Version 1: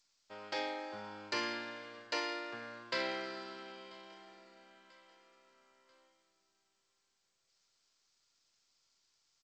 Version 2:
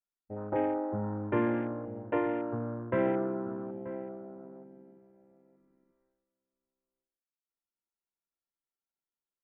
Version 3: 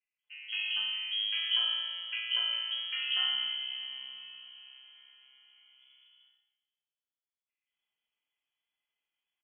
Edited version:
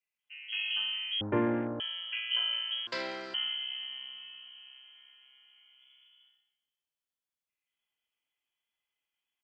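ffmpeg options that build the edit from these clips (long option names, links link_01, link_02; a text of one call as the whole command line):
ffmpeg -i take0.wav -i take1.wav -i take2.wav -filter_complex "[2:a]asplit=3[link_01][link_02][link_03];[link_01]atrim=end=1.212[link_04];[1:a]atrim=start=1.208:end=1.802[link_05];[link_02]atrim=start=1.798:end=2.872[link_06];[0:a]atrim=start=2.868:end=3.342[link_07];[link_03]atrim=start=3.338[link_08];[link_04][link_05]acrossfade=duration=0.004:curve1=hsin:curve2=hsin[link_09];[link_09][link_06]acrossfade=duration=0.004:curve1=hsin:curve2=hsin[link_10];[link_10][link_07]acrossfade=duration=0.004:curve1=hsin:curve2=hsin[link_11];[link_11][link_08]acrossfade=duration=0.004:curve1=hsin:curve2=hsin" out.wav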